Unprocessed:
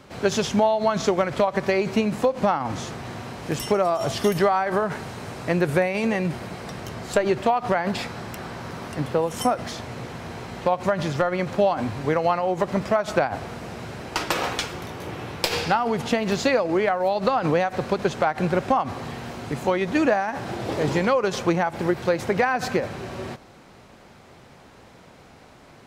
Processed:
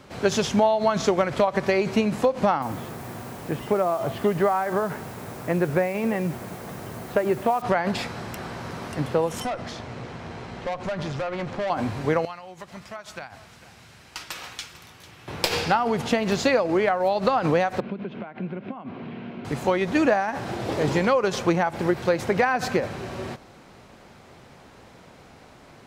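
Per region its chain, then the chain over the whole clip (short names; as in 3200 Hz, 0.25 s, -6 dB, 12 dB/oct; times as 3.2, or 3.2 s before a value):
2.62–7.62 HPF 93 Hz 6 dB/oct + air absorption 450 m + requantised 8-bit, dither triangular
9.4–11.7 air absorption 65 m + tube stage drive 24 dB, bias 0.4
12.25–15.28 passive tone stack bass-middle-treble 5-5-5 + echo 0.447 s -16.5 dB
17.8–19.45 compressor 4:1, threshold -29 dBFS + speaker cabinet 180–2700 Hz, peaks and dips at 200 Hz +10 dB, 530 Hz -6 dB, 820 Hz -10 dB, 1200 Hz -8 dB, 1800 Hz -9 dB
whole clip: dry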